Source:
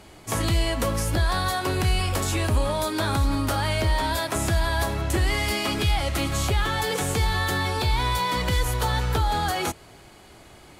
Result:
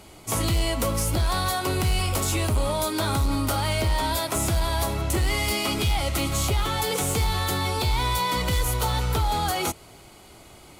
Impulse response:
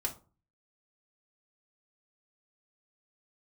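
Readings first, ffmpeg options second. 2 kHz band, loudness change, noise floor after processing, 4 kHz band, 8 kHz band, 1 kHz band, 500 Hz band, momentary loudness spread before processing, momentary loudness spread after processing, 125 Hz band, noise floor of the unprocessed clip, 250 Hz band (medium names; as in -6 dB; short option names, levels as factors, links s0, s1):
-3.0 dB, 0.0 dB, -48 dBFS, +0.5 dB, +3.0 dB, -0.5 dB, -0.5 dB, 2 LU, 1 LU, -0.5 dB, -49 dBFS, -0.5 dB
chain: -af "highshelf=f=8300:g=7,volume=7.94,asoftclip=hard,volume=0.126,bandreject=f=1700:w=6.5"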